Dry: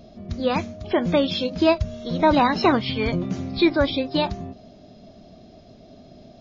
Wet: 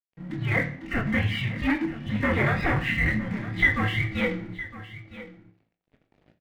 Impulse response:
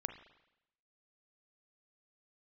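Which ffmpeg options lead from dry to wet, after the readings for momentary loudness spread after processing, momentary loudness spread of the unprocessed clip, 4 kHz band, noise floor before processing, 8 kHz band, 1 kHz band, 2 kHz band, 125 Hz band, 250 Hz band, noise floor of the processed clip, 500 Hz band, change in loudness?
15 LU, 10 LU, -8.5 dB, -48 dBFS, no reading, -10.0 dB, +5.5 dB, +2.5 dB, -6.0 dB, -80 dBFS, -11.0 dB, -3.5 dB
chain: -filter_complex "[0:a]agate=range=0.316:threshold=0.00562:ratio=16:detection=peak,aecho=1:1:4.5:0.76,acontrast=50,flanger=delay=19.5:depth=6:speed=2.2,afreqshift=-380,volume=5.01,asoftclip=hard,volume=0.2,lowpass=f=2000:t=q:w=5.3,aeval=exprs='sgn(val(0))*max(abs(val(0))-0.0106,0)':c=same,aecho=1:1:961:0.168[s0];[1:a]atrim=start_sample=2205,asetrate=83790,aresample=44100[s1];[s0][s1]afir=irnorm=-1:irlink=0"

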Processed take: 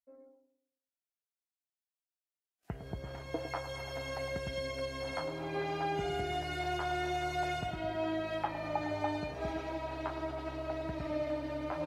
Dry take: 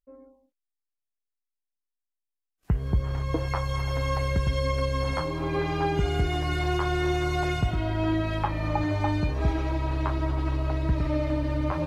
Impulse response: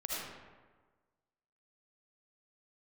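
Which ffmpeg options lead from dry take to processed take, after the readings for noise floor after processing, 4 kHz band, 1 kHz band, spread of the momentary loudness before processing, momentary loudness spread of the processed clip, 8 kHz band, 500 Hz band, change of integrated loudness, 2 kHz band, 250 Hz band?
under -85 dBFS, -6.5 dB, -5.5 dB, 3 LU, 6 LU, -6.5 dB, -6.0 dB, -9.5 dB, -6.5 dB, -10.5 dB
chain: -filter_complex "[0:a]highpass=f=360:p=1,equalizer=f=680:w=5.8:g=8,bandreject=f=1100:w=8.2,asplit=2[s0][s1];[s1]adelay=107,lowpass=f=1000:p=1,volume=0.376,asplit=2[s2][s3];[s3]adelay=107,lowpass=f=1000:p=1,volume=0.44,asplit=2[s4][s5];[s5]adelay=107,lowpass=f=1000:p=1,volume=0.44,asplit=2[s6][s7];[s7]adelay=107,lowpass=f=1000:p=1,volume=0.44,asplit=2[s8][s9];[s9]adelay=107,lowpass=f=1000:p=1,volume=0.44[s10];[s2][s4][s6][s8][s10]amix=inputs=5:normalize=0[s11];[s0][s11]amix=inputs=2:normalize=0,volume=0.473"

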